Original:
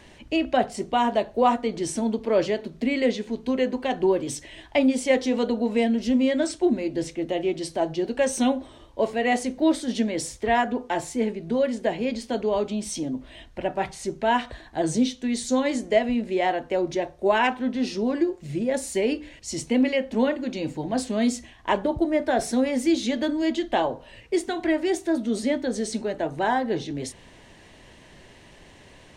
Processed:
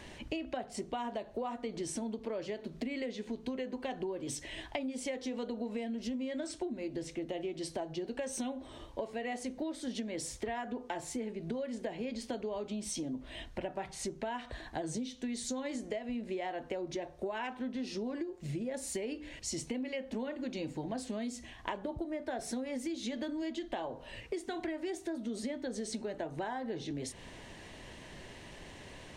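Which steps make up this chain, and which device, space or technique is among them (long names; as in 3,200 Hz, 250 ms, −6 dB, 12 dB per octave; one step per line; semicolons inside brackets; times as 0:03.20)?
serial compression, leveller first (downward compressor 2.5 to 1, threshold −24 dBFS, peak gain reduction 7.5 dB; downward compressor 5 to 1, threshold −36 dBFS, peak gain reduction 14.5 dB)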